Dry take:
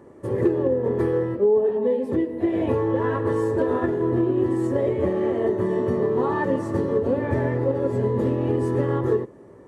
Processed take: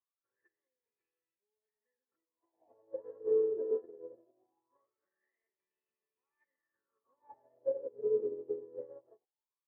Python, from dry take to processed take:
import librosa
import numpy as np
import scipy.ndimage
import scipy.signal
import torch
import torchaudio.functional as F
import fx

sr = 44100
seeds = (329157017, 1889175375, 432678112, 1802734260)

y = fx.wah_lfo(x, sr, hz=0.21, low_hz=420.0, high_hz=2600.0, q=14.0)
y = fx.upward_expand(y, sr, threshold_db=-50.0, expansion=2.5)